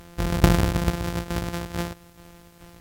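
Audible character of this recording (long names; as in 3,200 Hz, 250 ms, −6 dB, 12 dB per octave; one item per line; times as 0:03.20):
a buzz of ramps at a fixed pitch in blocks of 256 samples
tremolo saw down 2.3 Hz, depth 60%
a quantiser's noise floor 10 bits, dither triangular
Ogg Vorbis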